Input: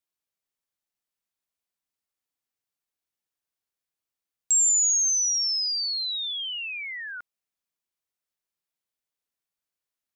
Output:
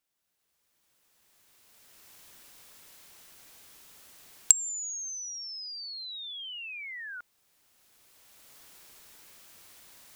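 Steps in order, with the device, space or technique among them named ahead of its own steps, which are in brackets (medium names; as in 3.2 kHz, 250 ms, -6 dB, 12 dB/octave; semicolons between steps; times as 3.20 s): cheap recorder with automatic gain (white noise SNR 39 dB; recorder AGC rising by 14 dB/s); trim -14.5 dB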